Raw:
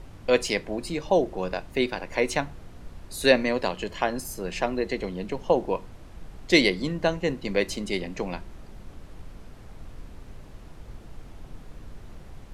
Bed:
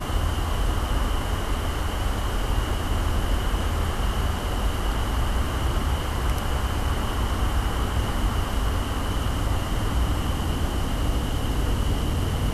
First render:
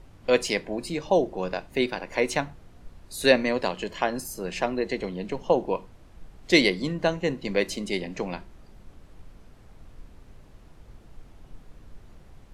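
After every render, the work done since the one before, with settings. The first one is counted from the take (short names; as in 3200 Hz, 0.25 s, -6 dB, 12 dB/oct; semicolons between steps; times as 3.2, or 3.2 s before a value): noise print and reduce 6 dB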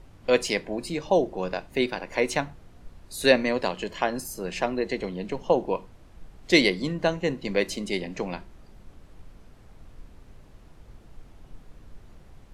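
nothing audible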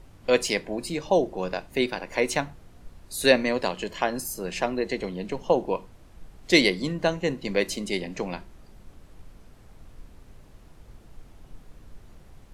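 high shelf 7400 Hz +6 dB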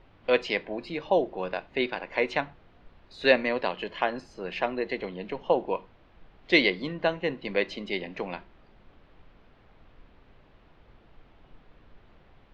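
LPF 3600 Hz 24 dB/oct; low shelf 270 Hz -9.5 dB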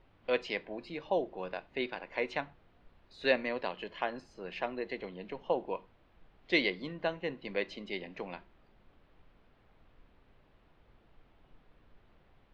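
gain -7.5 dB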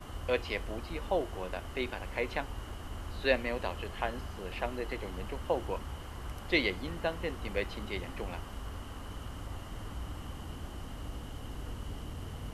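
add bed -17 dB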